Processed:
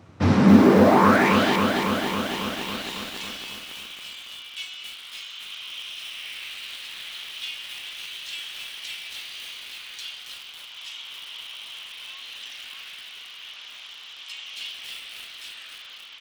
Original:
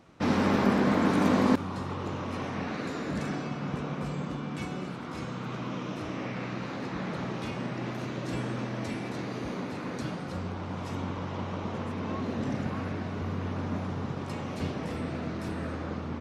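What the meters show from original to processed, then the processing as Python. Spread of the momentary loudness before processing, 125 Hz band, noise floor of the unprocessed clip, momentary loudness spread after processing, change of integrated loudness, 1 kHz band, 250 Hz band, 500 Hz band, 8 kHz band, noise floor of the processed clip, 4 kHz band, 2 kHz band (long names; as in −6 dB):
11 LU, +2.0 dB, −37 dBFS, 21 LU, +8.5 dB, +7.0 dB, +5.5 dB, +6.5 dB, +9.0 dB, −43 dBFS, +14.0 dB, +8.0 dB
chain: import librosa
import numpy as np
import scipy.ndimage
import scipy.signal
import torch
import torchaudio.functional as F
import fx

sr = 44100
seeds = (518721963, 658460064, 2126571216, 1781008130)

y = fx.filter_sweep_highpass(x, sr, from_hz=92.0, to_hz=3100.0, start_s=0.27, end_s=1.4, q=5.2)
y = fx.echo_crushed(y, sr, ms=275, feedback_pct=80, bits=7, wet_db=-5.0)
y = y * librosa.db_to_amplitude(4.0)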